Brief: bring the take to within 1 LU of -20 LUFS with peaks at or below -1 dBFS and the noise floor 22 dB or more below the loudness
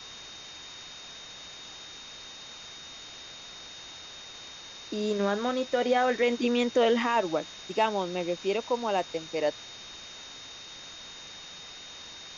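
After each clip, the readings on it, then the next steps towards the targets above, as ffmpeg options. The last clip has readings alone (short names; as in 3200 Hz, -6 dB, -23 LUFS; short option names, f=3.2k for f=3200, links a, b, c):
steady tone 3700 Hz; tone level -45 dBFS; noise floor -45 dBFS; noise floor target -50 dBFS; loudness -28.0 LUFS; peak -13.5 dBFS; loudness target -20.0 LUFS
-> -af "bandreject=f=3.7k:w=30"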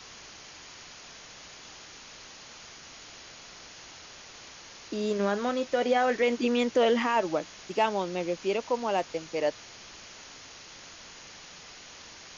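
steady tone none; noise floor -48 dBFS; noise floor target -50 dBFS
-> -af "afftdn=nr=6:nf=-48"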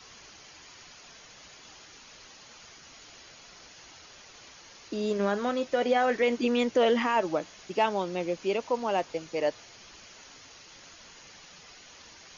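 noise floor -52 dBFS; loudness -28.0 LUFS; peak -14.0 dBFS; loudness target -20.0 LUFS
-> -af "volume=8dB"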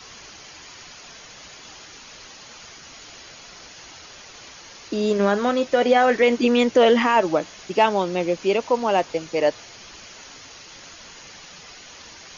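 loudness -20.0 LUFS; peak -6.0 dBFS; noise floor -44 dBFS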